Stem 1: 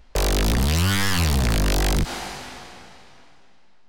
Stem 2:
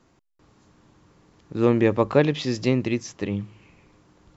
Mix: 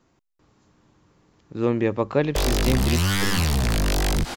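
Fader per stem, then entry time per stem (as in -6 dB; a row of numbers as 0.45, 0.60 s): -1.5, -3.0 dB; 2.20, 0.00 s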